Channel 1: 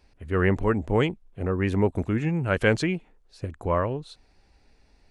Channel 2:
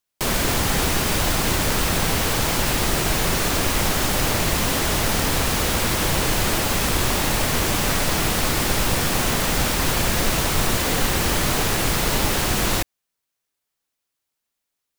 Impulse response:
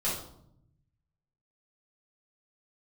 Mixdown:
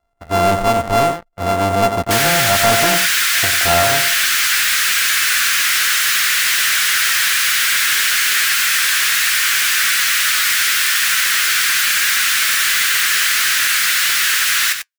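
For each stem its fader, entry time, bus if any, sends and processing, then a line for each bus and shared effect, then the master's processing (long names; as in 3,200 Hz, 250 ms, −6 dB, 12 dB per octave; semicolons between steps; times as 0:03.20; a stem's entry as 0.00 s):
−7.0 dB, 0.00 s, no send, echo send −10.5 dB, samples sorted by size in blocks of 64 samples
+1.5 dB, 1.90 s, no send, echo send −9.5 dB, Butterworth high-pass 1,500 Hz 48 dB per octave; flanger 1.2 Hz, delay 6.4 ms, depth 4.9 ms, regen +56%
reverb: not used
echo: single-tap delay 93 ms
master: parametric band 920 Hz +11 dB 1.7 octaves; leveller curve on the samples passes 3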